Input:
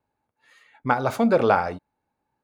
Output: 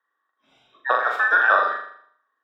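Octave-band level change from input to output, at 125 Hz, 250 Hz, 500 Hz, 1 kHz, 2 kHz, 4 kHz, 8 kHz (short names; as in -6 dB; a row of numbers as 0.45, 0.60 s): under -30 dB, under -20 dB, -6.0 dB, +3.0 dB, +13.0 dB, +2.5 dB, n/a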